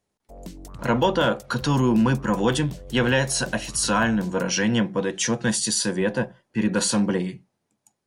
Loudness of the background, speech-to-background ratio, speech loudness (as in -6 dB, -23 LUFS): -42.0 LUFS, 19.0 dB, -23.0 LUFS